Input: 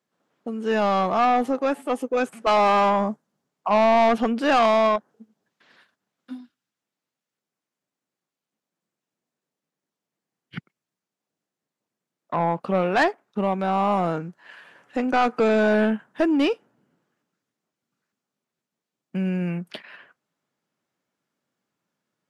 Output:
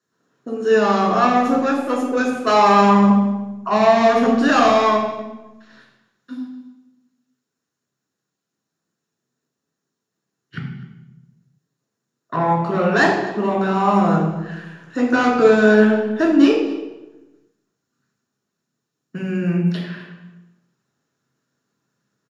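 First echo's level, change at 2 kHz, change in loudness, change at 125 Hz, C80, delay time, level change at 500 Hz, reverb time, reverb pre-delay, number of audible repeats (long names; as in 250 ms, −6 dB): −19.0 dB, +6.5 dB, +5.5 dB, +8.5 dB, 6.5 dB, 254 ms, +5.0 dB, 1.1 s, 3 ms, 1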